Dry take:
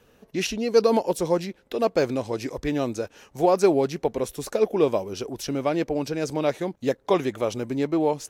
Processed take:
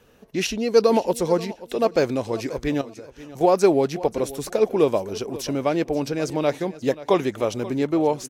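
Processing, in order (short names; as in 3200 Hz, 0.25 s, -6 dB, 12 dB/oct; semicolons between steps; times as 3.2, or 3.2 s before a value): 2.81–3.41 compressor 6:1, threshold -40 dBFS, peak gain reduction 17 dB; feedback echo 0.533 s, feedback 22%, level -17 dB; gain +2 dB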